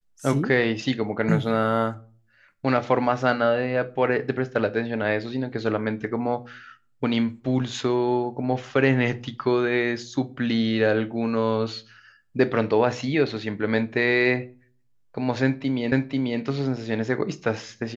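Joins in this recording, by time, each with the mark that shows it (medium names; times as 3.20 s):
15.92 s: repeat of the last 0.49 s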